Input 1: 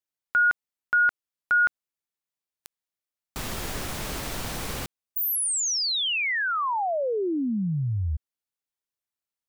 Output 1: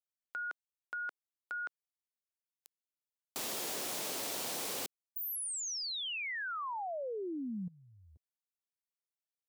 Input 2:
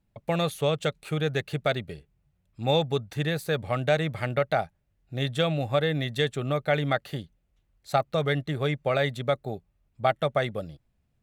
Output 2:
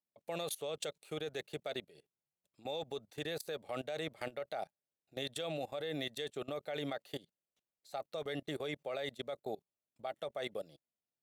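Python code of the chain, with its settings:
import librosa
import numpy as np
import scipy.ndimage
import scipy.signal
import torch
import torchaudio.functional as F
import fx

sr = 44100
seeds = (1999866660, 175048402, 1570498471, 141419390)

y = scipy.signal.sosfilt(scipy.signal.butter(2, 420.0, 'highpass', fs=sr, output='sos'), x)
y = fx.peak_eq(y, sr, hz=1500.0, db=-9.0, octaves=1.9)
y = fx.level_steps(y, sr, step_db=21)
y = y * 10.0 ** (3.5 / 20.0)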